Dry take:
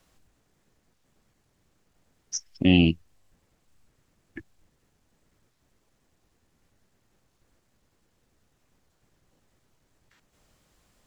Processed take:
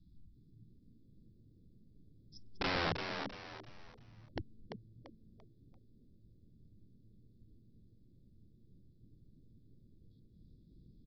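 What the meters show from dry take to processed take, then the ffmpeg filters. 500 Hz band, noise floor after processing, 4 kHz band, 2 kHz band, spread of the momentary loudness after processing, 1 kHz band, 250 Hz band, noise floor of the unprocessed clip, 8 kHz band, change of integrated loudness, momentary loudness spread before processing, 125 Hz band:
−8.0 dB, −64 dBFS, −10.0 dB, −6.5 dB, 25 LU, +3.5 dB, −21.0 dB, −71 dBFS, can't be measured, −17.0 dB, 15 LU, −17.5 dB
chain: -filter_complex "[0:a]afftfilt=real='re*(1-between(b*sr/4096,370,3300))':imag='im*(1-between(b*sr/4096,370,3300))':win_size=4096:overlap=0.75,firequalizer=gain_entry='entry(180,0);entry(330,-10);entry(1400,-20)':delay=0.05:min_phase=1,acompressor=threshold=-31dB:ratio=4,aresample=11025,aeval=exprs='(mod(63.1*val(0)+1,2)-1)/63.1':channel_layout=same,aresample=44100,asplit=5[link_01][link_02][link_03][link_04][link_05];[link_02]adelay=341,afreqshift=110,volume=-6.5dB[link_06];[link_03]adelay=682,afreqshift=220,volume=-16.1dB[link_07];[link_04]adelay=1023,afreqshift=330,volume=-25.8dB[link_08];[link_05]adelay=1364,afreqshift=440,volume=-35.4dB[link_09];[link_01][link_06][link_07][link_08][link_09]amix=inputs=5:normalize=0,volume=7.5dB"

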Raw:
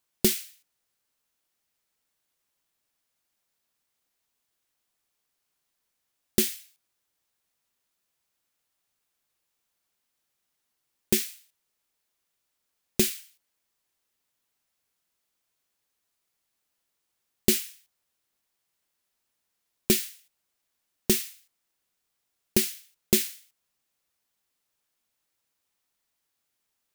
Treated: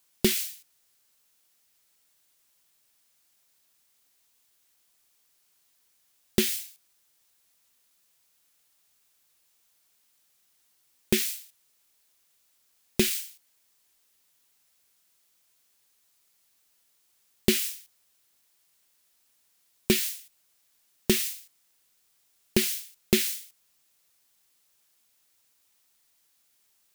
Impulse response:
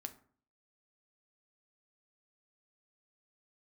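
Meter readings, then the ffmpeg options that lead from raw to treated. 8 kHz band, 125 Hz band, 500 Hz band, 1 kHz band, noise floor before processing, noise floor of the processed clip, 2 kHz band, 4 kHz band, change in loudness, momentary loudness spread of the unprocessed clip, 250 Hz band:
−1.5 dB, +1.0 dB, +1.0 dB, +2.0 dB, −80 dBFS, −69 dBFS, +4.0 dB, +2.0 dB, −1.5 dB, 15 LU, +1.0 dB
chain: -filter_complex "[0:a]acrossover=split=3600[link_01][link_02];[link_02]acompressor=threshold=-34dB:ratio=4:attack=1:release=60[link_03];[link_01][link_03]amix=inputs=2:normalize=0,highshelf=frequency=2600:gain=7.5,asplit=2[link_04][link_05];[link_05]alimiter=limit=-15.5dB:level=0:latency=1:release=206,volume=3dB[link_06];[link_04][link_06]amix=inputs=2:normalize=0,volume=-3dB"

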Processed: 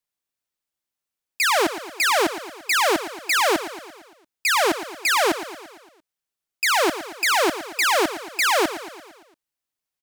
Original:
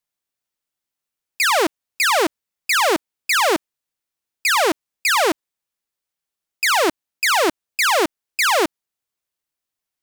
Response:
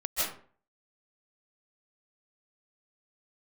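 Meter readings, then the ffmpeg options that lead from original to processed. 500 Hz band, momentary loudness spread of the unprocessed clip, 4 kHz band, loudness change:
−2.0 dB, 7 LU, −2.0 dB, −2.5 dB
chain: -af "aecho=1:1:114|228|342|456|570|684:0.224|0.128|0.0727|0.0415|0.0236|0.0135,volume=-2.5dB"

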